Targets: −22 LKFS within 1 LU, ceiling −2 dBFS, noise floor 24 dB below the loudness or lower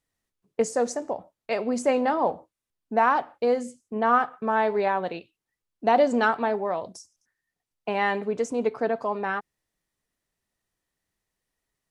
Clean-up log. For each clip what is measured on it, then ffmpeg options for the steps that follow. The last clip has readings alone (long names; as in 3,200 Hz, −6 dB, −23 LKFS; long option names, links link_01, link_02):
integrated loudness −25.5 LKFS; sample peak −8.5 dBFS; target loudness −22.0 LKFS
→ -af "volume=3.5dB"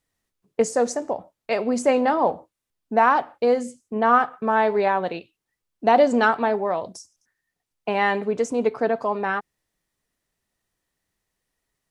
integrated loudness −22.0 LKFS; sample peak −5.0 dBFS; background noise floor −84 dBFS